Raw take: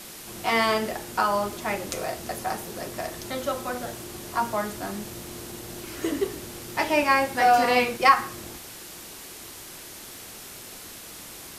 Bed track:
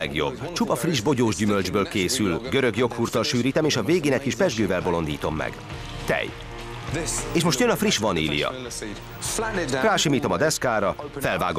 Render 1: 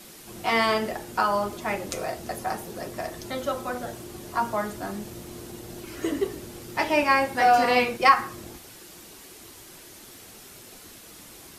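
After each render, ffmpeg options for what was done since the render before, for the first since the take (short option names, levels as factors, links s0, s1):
-af "afftdn=nr=6:nf=-42"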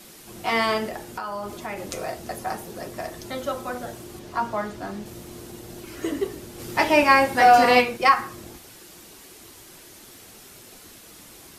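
-filter_complex "[0:a]asettb=1/sr,asplit=3[s0][s1][s2];[s0]atrim=end=0.884[s3];[s1]atrim=start=0.88:end=1.93,asetpts=PTS-STARTPTS,afade=t=in:d=0.004:c=qsin,afade=t=out:st=1.046:d=0.004:c=qsin,acompressor=threshold=0.0447:ratio=10:attack=3.2:release=140:knee=1:detection=peak[s4];[s2]atrim=start=1.926[s5];[s3][s4]acrossfade=d=0.004:c1=hsin:c2=qsin[s6];[s6][s5]acrossfade=d=0.004:c1=qsin:c2=hsin,asettb=1/sr,asplit=3[s7][s8][s9];[s7]atrim=end=4.194[s10];[s8]atrim=start=4.19:end=5.06,asetpts=PTS-STARTPTS,afade=t=in:d=0.004:c=qsin,afade=t=out:st=0.866:d=0.004:c=qsin,acrossover=split=6200[s11][s12];[s12]acompressor=threshold=0.00158:ratio=4:attack=1:release=60[s13];[s11][s13]amix=inputs=2:normalize=0[s14];[s9]atrim=start=5.056[s15];[s10][s14]acrossfade=d=0.004:c1=hsin:c2=qsin[s16];[s16][s15]acrossfade=d=0.004:c1=qsin:c2=hsin,asplit=3[s17][s18][s19];[s17]afade=t=out:st=6.58:d=0.02[s20];[s18]acontrast=23,afade=t=in:st=6.58:d=0.02,afade=t=out:st=7.8:d=0.02[s21];[s19]afade=t=in:st=7.8:d=0.02[s22];[s20][s21][s22]amix=inputs=3:normalize=0"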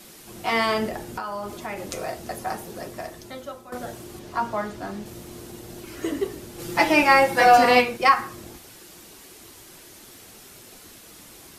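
-filter_complex "[0:a]asettb=1/sr,asplit=3[s0][s1][s2];[s0]atrim=end=0.784[s3];[s1]atrim=start=0.78:end=1.22,asetpts=PTS-STARTPTS,afade=t=in:d=0.004:c=qsin,afade=t=out:st=0.436:d=0.004:c=qsin,lowshelf=f=360:g=5.5[s4];[s2]atrim=start=1.216[s5];[s3][s4]acrossfade=d=0.004:c1=hsin:c2=qsin[s6];[s6][s5]acrossfade=d=0.004:c1=qsin:c2=hsin,asettb=1/sr,asplit=3[s7][s8][s9];[s7]atrim=end=6.584[s10];[s8]atrim=start=6.58:end=7.57,asetpts=PTS-STARTPTS,afade=t=in:d=0.004:c=qsin,afade=t=out:st=0.986:d=0.004:c=qsin,aecho=1:1:5.9:0.65,atrim=end_sample=43659[s11];[s9]atrim=start=7.566[s12];[s10][s11]acrossfade=d=0.004:c1=hsin:c2=qsin[s13];[s13][s12]acrossfade=d=0.004:c1=qsin:c2=hsin,asplit=2[s14][s15];[s14]atrim=end=3.72,asetpts=PTS-STARTPTS,afade=t=out:st=2.78:d=0.94:silence=0.188365[s16];[s15]atrim=start=3.72,asetpts=PTS-STARTPTS,afade=t=in:d=0.004:c=hsin:silence=0.188365[s17];[s16][s17]concat=n=2:v=0:a=1"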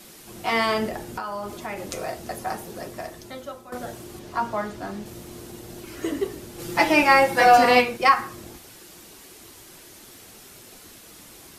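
-af anull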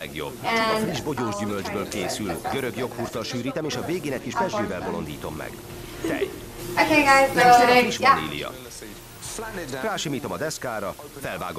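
-filter_complex "[1:a]volume=0.447[s0];[0:a][s0]amix=inputs=2:normalize=0"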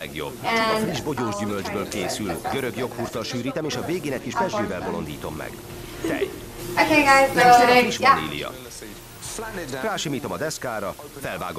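-af "volume=1.12"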